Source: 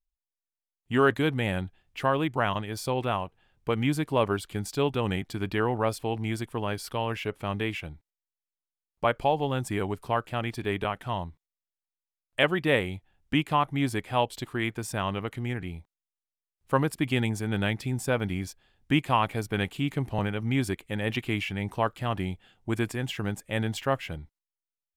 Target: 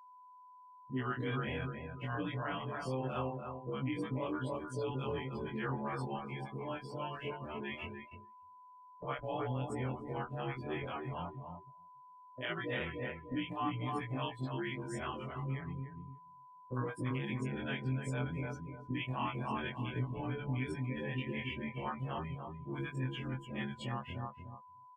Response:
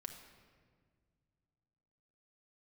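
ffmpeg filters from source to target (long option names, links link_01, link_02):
-filter_complex "[0:a]afftfilt=real='re':imag='-im':win_size=2048:overlap=0.75,flanger=delay=6.8:depth=1.4:regen=5:speed=0.44:shape=sinusoidal,asplit=2[link_01][link_02];[link_02]adelay=294,lowpass=frequency=2500:poles=1,volume=-5dB,asplit=2[link_03][link_04];[link_04]adelay=294,lowpass=frequency=2500:poles=1,volume=0.38,asplit=2[link_05][link_06];[link_06]adelay=294,lowpass=frequency=2500:poles=1,volume=0.38,asplit=2[link_07][link_08];[link_08]adelay=294,lowpass=frequency=2500:poles=1,volume=0.38,asplit=2[link_09][link_10];[link_10]adelay=294,lowpass=frequency=2500:poles=1,volume=0.38[link_11];[link_03][link_05][link_07][link_09][link_11]amix=inputs=5:normalize=0[link_12];[link_01][link_12]amix=inputs=2:normalize=0,afftdn=noise_reduction=24:noise_floor=-44,alimiter=level_in=1.5dB:limit=-24dB:level=0:latency=1:release=35,volume=-1.5dB,acrossover=split=580[link_13][link_14];[link_14]adelay=50[link_15];[link_13][link_15]amix=inputs=2:normalize=0,agate=range=-13dB:threshold=-52dB:ratio=16:detection=peak,aeval=exprs='val(0)+0.00224*sin(2*PI*1000*n/s)':channel_layout=same,volume=-1.5dB"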